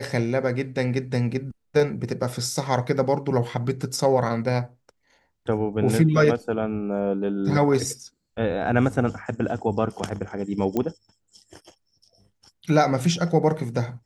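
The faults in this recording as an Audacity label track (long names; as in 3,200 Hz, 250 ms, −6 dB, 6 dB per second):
10.770000	10.770000	click −13 dBFS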